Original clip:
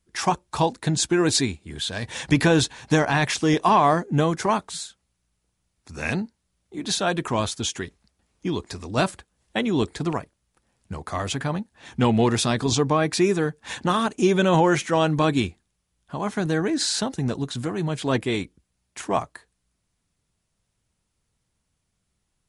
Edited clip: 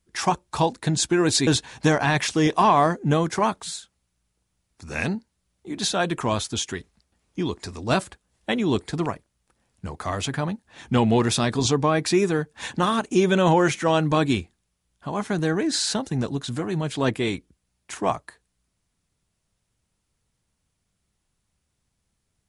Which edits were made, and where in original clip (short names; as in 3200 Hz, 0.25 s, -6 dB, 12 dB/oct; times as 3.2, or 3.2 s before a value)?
1.47–2.54 cut